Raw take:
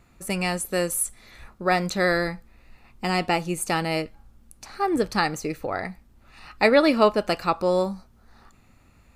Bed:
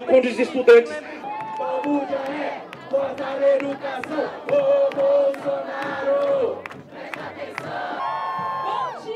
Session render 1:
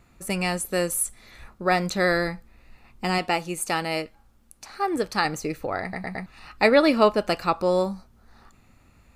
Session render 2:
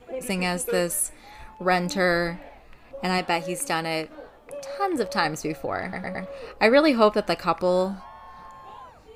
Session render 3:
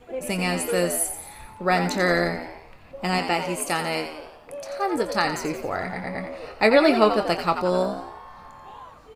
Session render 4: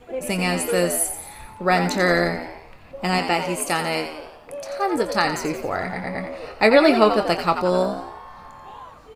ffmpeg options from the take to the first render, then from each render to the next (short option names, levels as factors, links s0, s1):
-filter_complex "[0:a]asettb=1/sr,asplit=3[s0][s1][s2];[s0]atrim=end=3.184[s3];[s1]atrim=start=3.18:end=5.25,asetpts=PTS-STARTPTS,afade=t=in:d=0.004:c=qsin,afade=t=out:st=2.066:d=0.004:c=qsin,lowshelf=f=260:g=-8[s4];[s2]atrim=start=5.246[s5];[s3][s4]acrossfade=d=0.004:c1=hsin:c2=qsin[s6];[s6][s5]acrossfade=d=0.004:c1=qsin:c2=hsin,asplit=5[s7][s8][s9][s10][s11];[s7]atrim=end=5.932[s12];[s8]atrim=start=5.818:end=5.932[s13];[s9]atrim=start=5.818:end=5.932[s14];[s10]atrim=start=5.818:end=5.932[s15];[s11]atrim=start=6.258[s16];[s12][s13]acrossfade=d=0.004:c1=hsin:c2=hsin[s17];[s17][s14]acrossfade=d=0.004:c1=hsin:c2=hsin[s18];[s18][s15]acrossfade=d=0.004:c1=hsin:c2=hsin[s19];[s19][s16]acrossfade=d=0.004:c1=hsin:c2=hsin"
-filter_complex "[1:a]volume=0.119[s0];[0:a][s0]amix=inputs=2:normalize=0"
-filter_complex "[0:a]asplit=2[s0][s1];[s1]adelay=23,volume=0.282[s2];[s0][s2]amix=inputs=2:normalize=0,asplit=7[s3][s4][s5][s6][s7][s8][s9];[s4]adelay=87,afreqshift=74,volume=0.355[s10];[s5]adelay=174,afreqshift=148,volume=0.182[s11];[s6]adelay=261,afreqshift=222,volume=0.0923[s12];[s7]adelay=348,afreqshift=296,volume=0.0473[s13];[s8]adelay=435,afreqshift=370,volume=0.024[s14];[s9]adelay=522,afreqshift=444,volume=0.0123[s15];[s3][s10][s11][s12][s13][s14][s15]amix=inputs=7:normalize=0"
-af "volume=1.33,alimiter=limit=0.794:level=0:latency=1"